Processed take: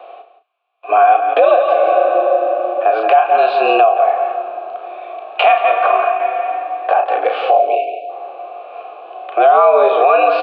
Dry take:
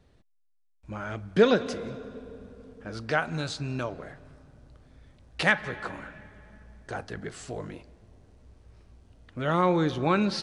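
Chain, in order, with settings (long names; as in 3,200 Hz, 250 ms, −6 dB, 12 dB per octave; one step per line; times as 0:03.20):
0:05.52–0:06.20: downward expander −36 dBFS
0:07.57–0:08.10: time-frequency box erased 660–2,100 Hz
single-sideband voice off tune +100 Hz 300–3,500 Hz
formant filter a
double-tracking delay 34 ms −9 dB
on a send: single-tap delay 172 ms −12.5 dB
on the sum: downward compressor 4 to 1, threshold −51 dBFS, peak gain reduction 21 dB
harmonic and percussive parts rebalanced harmonic +9 dB
boost into a limiter +36 dB
level −1 dB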